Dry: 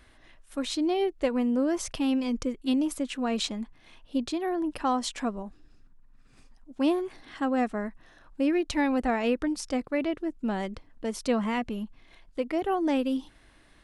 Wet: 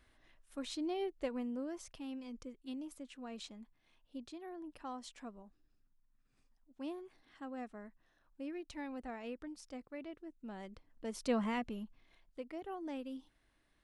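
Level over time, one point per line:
0:01.21 −11.5 dB
0:01.95 −18.5 dB
0:10.45 −18.5 dB
0:11.38 −6.5 dB
0:12.60 −17 dB

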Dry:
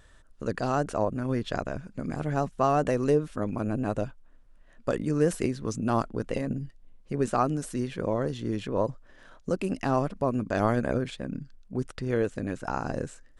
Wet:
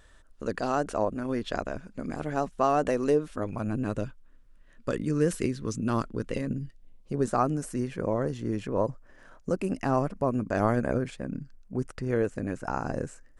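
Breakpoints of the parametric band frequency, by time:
parametric band −9 dB 0.63 octaves
0:03.35 130 Hz
0:03.80 740 Hz
0:06.64 740 Hz
0:07.43 3,600 Hz

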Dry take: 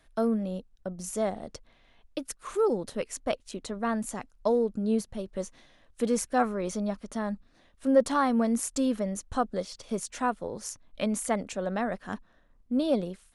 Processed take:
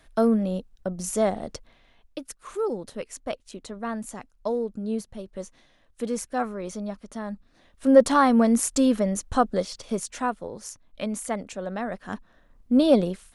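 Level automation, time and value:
0:01.51 +6 dB
0:02.25 −2 dB
0:07.25 −2 dB
0:07.94 +6.5 dB
0:09.56 +6.5 dB
0:10.58 −1 dB
0:11.80 −1 dB
0:12.74 +8 dB

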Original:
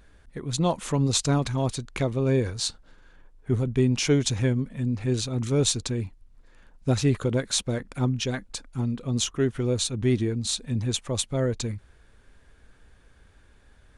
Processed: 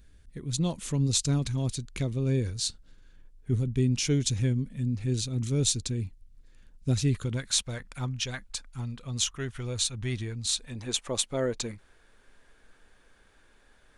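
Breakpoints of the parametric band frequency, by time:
parametric band −14 dB 2.5 octaves
0:07.03 890 Hz
0:07.61 320 Hz
0:10.50 320 Hz
0:11.03 72 Hz

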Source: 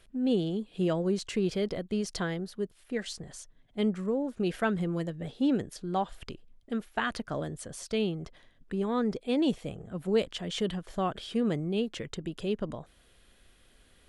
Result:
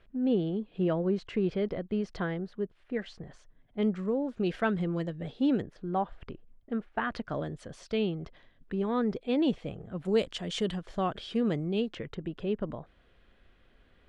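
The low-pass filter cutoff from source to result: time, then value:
2,300 Hz
from 0:03.83 4,500 Hz
from 0:05.62 1,800 Hz
from 0:07.13 3,700 Hz
from 0:10.05 9,300 Hz
from 0:10.79 5,400 Hz
from 0:11.95 2,400 Hz

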